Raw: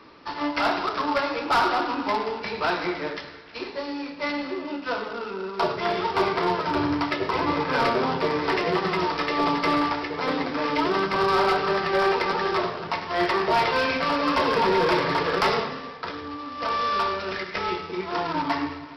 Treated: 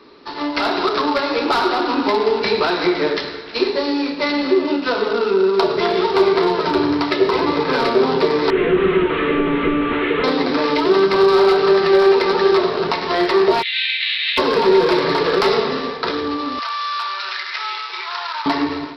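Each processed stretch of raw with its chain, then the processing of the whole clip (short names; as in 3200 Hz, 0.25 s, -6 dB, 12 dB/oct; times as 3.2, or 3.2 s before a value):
8.5–10.24 delta modulation 16 kbps, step -39 dBFS + EQ curve 490 Hz 0 dB, 810 Hz -8 dB, 1300 Hz +5 dB, 5400 Hz +13 dB
13.61–14.37 spectral whitening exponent 0.6 + elliptic band-pass 1900–3800 Hz, stop band 50 dB
16.59–18.46 HPF 980 Hz 24 dB/oct + compressor 3:1, threshold -34 dBFS
whole clip: compressor, threshold -27 dBFS; thirty-one-band EQ 100 Hz -11 dB, 250 Hz +4 dB, 400 Hz +11 dB, 4000 Hz +8 dB; AGC gain up to 10.5 dB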